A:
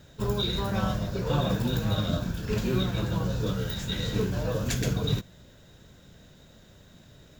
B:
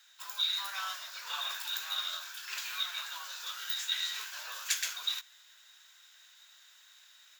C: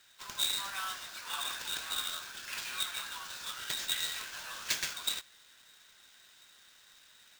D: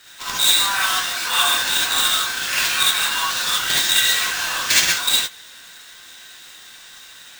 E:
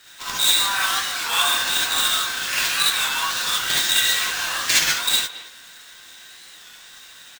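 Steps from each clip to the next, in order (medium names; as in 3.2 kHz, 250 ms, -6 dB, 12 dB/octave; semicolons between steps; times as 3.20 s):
Bessel high-pass 1.7 kHz, order 6; level rider gain up to 3 dB
peaking EQ 14 kHz -7.5 dB 0.77 oct; sample-rate reducer 12 kHz, jitter 20%
in parallel at +2 dB: gain riding within 4 dB 0.5 s; on the sum: gated-style reverb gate 90 ms rising, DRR -5.5 dB; trim +5.5 dB
speakerphone echo 220 ms, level -13 dB; warped record 33 1/3 rpm, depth 100 cents; trim -2 dB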